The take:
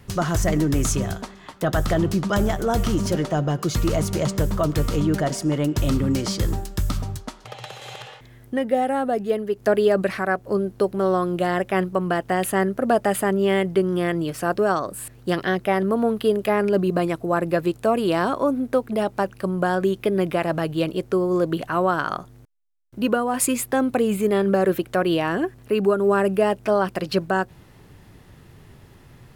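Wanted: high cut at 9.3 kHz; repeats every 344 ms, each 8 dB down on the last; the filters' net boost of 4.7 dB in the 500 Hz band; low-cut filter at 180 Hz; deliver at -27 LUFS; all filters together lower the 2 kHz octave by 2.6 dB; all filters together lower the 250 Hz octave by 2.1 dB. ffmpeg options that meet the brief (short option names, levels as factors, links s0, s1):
-af "highpass=180,lowpass=9300,equalizer=f=250:t=o:g=-5,equalizer=f=500:t=o:g=8,equalizer=f=2000:t=o:g=-4,aecho=1:1:344|688|1032|1376|1720:0.398|0.159|0.0637|0.0255|0.0102,volume=0.422"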